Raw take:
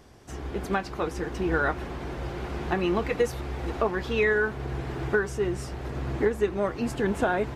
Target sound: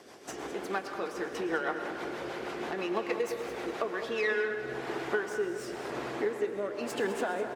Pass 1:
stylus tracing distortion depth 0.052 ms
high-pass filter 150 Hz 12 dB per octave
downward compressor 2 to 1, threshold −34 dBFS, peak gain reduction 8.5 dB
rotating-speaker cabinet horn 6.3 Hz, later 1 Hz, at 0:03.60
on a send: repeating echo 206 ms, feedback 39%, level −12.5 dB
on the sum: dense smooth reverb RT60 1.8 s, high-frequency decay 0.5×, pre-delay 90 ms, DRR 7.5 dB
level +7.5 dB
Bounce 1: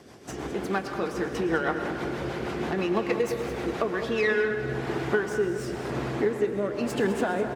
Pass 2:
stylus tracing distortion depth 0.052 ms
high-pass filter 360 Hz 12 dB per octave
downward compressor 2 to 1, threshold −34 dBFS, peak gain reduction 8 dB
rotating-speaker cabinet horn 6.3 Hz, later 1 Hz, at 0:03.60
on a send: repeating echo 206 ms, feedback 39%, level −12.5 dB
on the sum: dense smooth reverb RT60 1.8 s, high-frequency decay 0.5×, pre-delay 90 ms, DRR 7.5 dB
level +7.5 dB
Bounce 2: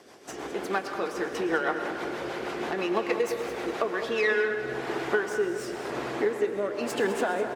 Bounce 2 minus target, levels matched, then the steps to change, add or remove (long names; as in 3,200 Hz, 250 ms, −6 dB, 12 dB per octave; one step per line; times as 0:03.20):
downward compressor: peak gain reduction −4.5 dB
change: downward compressor 2 to 1, threshold −43.5 dBFS, peak gain reduction 12.5 dB